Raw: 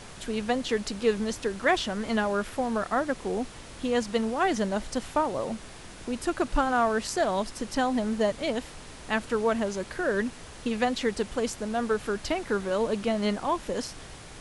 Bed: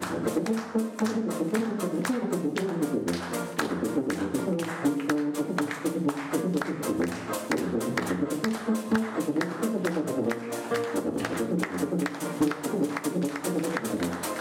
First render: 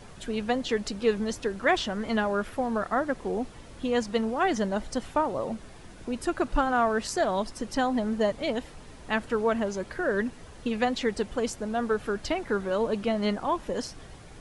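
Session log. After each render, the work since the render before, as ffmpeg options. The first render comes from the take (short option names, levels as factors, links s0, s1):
-af "afftdn=nr=8:nf=-45"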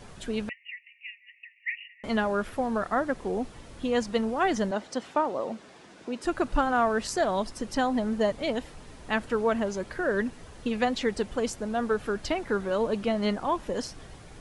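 -filter_complex "[0:a]asettb=1/sr,asplit=3[s0][s1][s2];[s0]atrim=end=0.494[s3];[s1]atrim=start=0.49:end=2.04,asetpts=PTS-STARTPTS,afade=t=in:d=0.004:c=qsin,afade=t=out:st=1.546:d=0.004:c=qsin,asuperpass=centerf=2300:order=20:qfactor=2.3[s4];[s2]atrim=start=2.036[s5];[s3][s4]acrossfade=d=0.004:c1=hsin:c2=qsin[s6];[s6][s5]acrossfade=d=0.004:c1=qsin:c2=hsin,asettb=1/sr,asplit=3[s7][s8][s9];[s7]atrim=end=4.714[s10];[s8]atrim=start=4.71:end=6.25,asetpts=PTS-STARTPTS,afade=t=in:d=0.004:c=qsin,afade=t=out:st=1.536:d=0.004:c=qsin,highpass=230,lowpass=7100[s11];[s9]atrim=start=6.246[s12];[s10][s11]acrossfade=d=0.004:c1=hsin:c2=qsin[s13];[s13][s12]acrossfade=d=0.004:c1=qsin:c2=hsin"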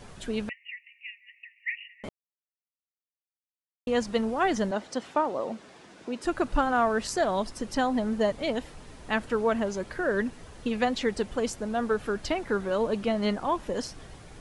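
-filter_complex "[0:a]asplit=3[s0][s1][s2];[s0]atrim=end=2.09,asetpts=PTS-STARTPTS,afade=t=out:st=2.086:d=0.004:c=hsin[s3];[s1]atrim=start=2.09:end=3.87,asetpts=PTS-STARTPTS,volume=0[s4];[s2]atrim=start=3.87,asetpts=PTS-STARTPTS,afade=t=in:d=0.004:c=hsin[s5];[s3][s4][s5]concat=n=3:v=0:a=1"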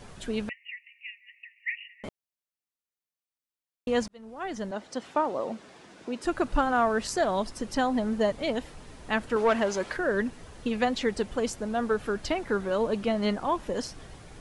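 -filter_complex "[0:a]asettb=1/sr,asplit=3[s0][s1][s2];[s0]atrim=end=9.364[s3];[s1]atrim=start=9.36:end=9.97,asetpts=PTS-STARTPTS,afade=t=in:d=0.004:c=qsin,afade=t=out:st=0.606:d=0.004:c=qsin,asplit=2[s4][s5];[s5]highpass=f=720:p=1,volume=4.47,asoftclip=type=tanh:threshold=0.211[s6];[s4][s6]amix=inputs=2:normalize=0,lowpass=f=5600:p=1,volume=0.501[s7];[s2]atrim=start=9.966[s8];[s3][s7]acrossfade=d=0.004:c1=hsin:c2=qsin[s9];[s9][s8]acrossfade=d=0.004:c1=qsin:c2=hsin,asplit=2[s10][s11];[s10]atrim=end=4.08,asetpts=PTS-STARTPTS,afade=t=out:st=4.076:d=0.004:c=hsin[s12];[s11]atrim=start=4.08,asetpts=PTS-STARTPTS,afade=t=in:d=1.17[s13];[s12][s13]concat=n=2:v=0:a=1"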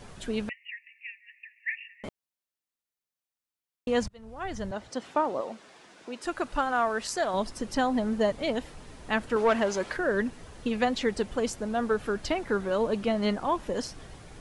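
-filter_complex "[0:a]asettb=1/sr,asplit=3[s0][s1][s2];[s0]atrim=end=0.704[s3];[s1]atrim=start=0.7:end=1.97,asetpts=PTS-STARTPTS,afade=t=in:d=0.004:c=qsin,afade=t=out:st=1.266:d=0.004:c=qsin,afreqshift=-81[s4];[s2]atrim=start=1.966[s5];[s3][s4]acrossfade=d=0.004:c1=hsin:c2=qsin[s6];[s6][s5]acrossfade=d=0.004:c1=qsin:c2=hsin,asettb=1/sr,asplit=3[s7][s8][s9];[s7]atrim=end=4.034[s10];[s8]atrim=start=4.03:end=4.9,asetpts=PTS-STARTPTS,afade=t=in:d=0.004:c=qsin,afade=t=out:st=0.866:d=0.004:c=qsin,lowshelf=f=150:t=q:w=1.5:g=13.5[s11];[s9]atrim=start=4.896[s12];[s10][s11]acrossfade=d=0.004:c1=hsin:c2=qsin[s13];[s13][s12]acrossfade=d=0.004:c1=qsin:c2=hsin,asettb=1/sr,asplit=3[s14][s15][s16];[s14]atrim=end=5.414[s17];[s15]atrim=start=5.41:end=7.34,asetpts=PTS-STARTPTS,afade=t=in:d=0.004:c=qsin,afade=t=out:st=1.926:d=0.004:c=qsin,lowshelf=f=390:g=-9.5[s18];[s16]atrim=start=7.336[s19];[s17][s18]acrossfade=d=0.004:c1=hsin:c2=qsin[s20];[s20][s19]acrossfade=d=0.004:c1=qsin:c2=hsin"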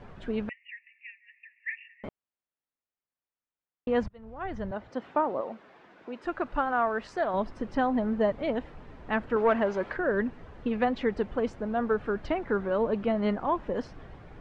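-af "lowpass=2000"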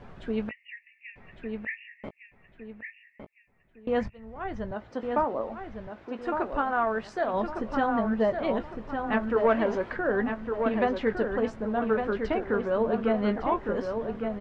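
-filter_complex "[0:a]asplit=2[s0][s1];[s1]adelay=18,volume=0.299[s2];[s0][s2]amix=inputs=2:normalize=0,asplit=2[s3][s4];[s4]adelay=1158,lowpass=f=3400:p=1,volume=0.531,asplit=2[s5][s6];[s6]adelay=1158,lowpass=f=3400:p=1,volume=0.38,asplit=2[s7][s8];[s8]adelay=1158,lowpass=f=3400:p=1,volume=0.38,asplit=2[s9][s10];[s10]adelay=1158,lowpass=f=3400:p=1,volume=0.38,asplit=2[s11][s12];[s12]adelay=1158,lowpass=f=3400:p=1,volume=0.38[s13];[s5][s7][s9][s11][s13]amix=inputs=5:normalize=0[s14];[s3][s14]amix=inputs=2:normalize=0"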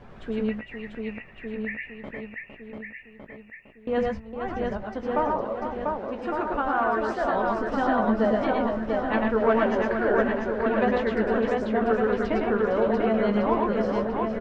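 -af "aecho=1:1:103|117|458|693:0.596|0.596|0.376|0.668"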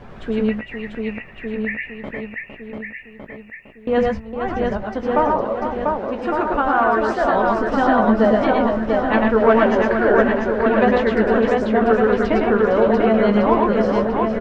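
-af "volume=2.37"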